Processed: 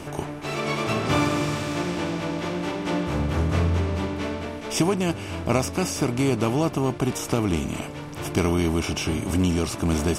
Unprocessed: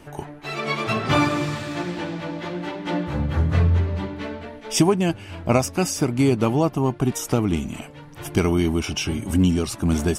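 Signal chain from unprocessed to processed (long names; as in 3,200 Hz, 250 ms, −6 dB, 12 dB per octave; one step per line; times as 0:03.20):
compressor on every frequency bin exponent 0.6
level −6 dB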